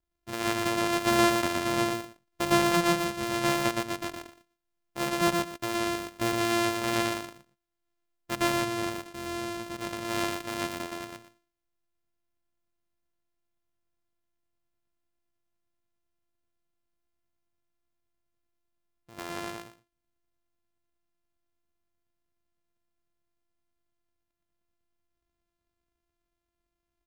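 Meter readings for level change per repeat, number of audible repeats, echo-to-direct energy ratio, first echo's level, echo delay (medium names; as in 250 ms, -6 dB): -15.0 dB, 2, -3.0 dB, -3.0 dB, 119 ms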